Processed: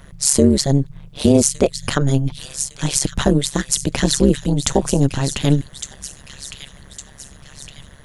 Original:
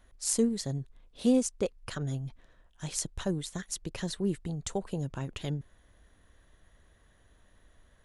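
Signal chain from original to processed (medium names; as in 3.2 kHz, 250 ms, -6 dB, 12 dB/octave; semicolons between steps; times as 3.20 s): on a send: feedback echo behind a high-pass 1159 ms, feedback 52%, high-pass 2.6 kHz, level -8.5 dB; on the sum: AM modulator 140 Hz, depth 95%; loudness maximiser +23 dB; trim -1 dB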